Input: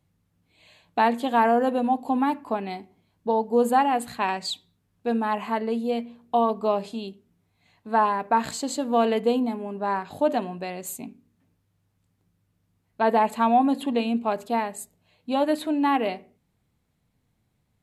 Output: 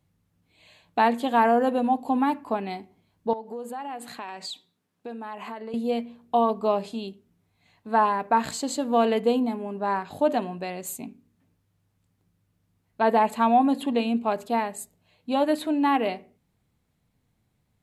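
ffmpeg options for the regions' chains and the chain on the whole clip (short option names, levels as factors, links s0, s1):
-filter_complex "[0:a]asettb=1/sr,asplit=3[s0][s1][s2];[s0]atrim=end=3.334[s3];[s1]atrim=start=3.33:end=5.74,asetpts=PTS-STARTPTS,afade=t=in:d=0.004:c=qsin,afade=t=out:st=2.406:d=0.004:c=qsin,highshelf=f=11000:g=-4,acompressor=threshold=0.0251:ratio=6:attack=3.2:release=140:knee=1:detection=peak,highpass=230[s4];[s2]atrim=start=5.736[s5];[s3][s4]acrossfade=d=0.004:c1=hsin:c2=qsin[s6];[s6][s5]acrossfade=d=0.004:c1=qsin:c2=hsin"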